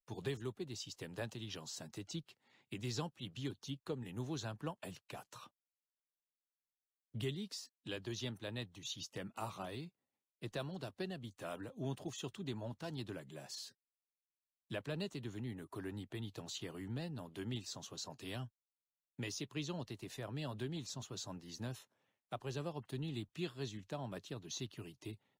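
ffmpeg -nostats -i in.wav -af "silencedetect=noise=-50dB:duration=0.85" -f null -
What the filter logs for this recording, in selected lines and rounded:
silence_start: 5.47
silence_end: 7.15 | silence_duration: 1.68
silence_start: 13.69
silence_end: 14.71 | silence_duration: 1.02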